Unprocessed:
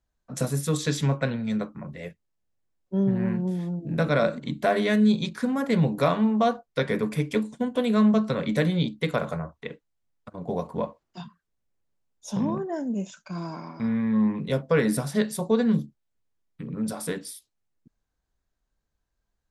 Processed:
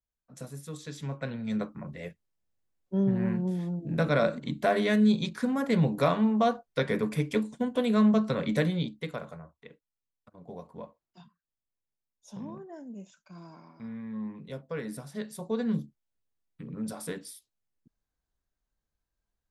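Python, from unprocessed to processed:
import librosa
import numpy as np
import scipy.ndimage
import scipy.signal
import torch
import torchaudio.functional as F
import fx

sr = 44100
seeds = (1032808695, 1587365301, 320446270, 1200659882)

y = fx.gain(x, sr, db=fx.line((0.91, -15.0), (1.6, -2.5), (8.58, -2.5), (9.37, -14.0), (15.07, -14.0), (15.76, -6.0)))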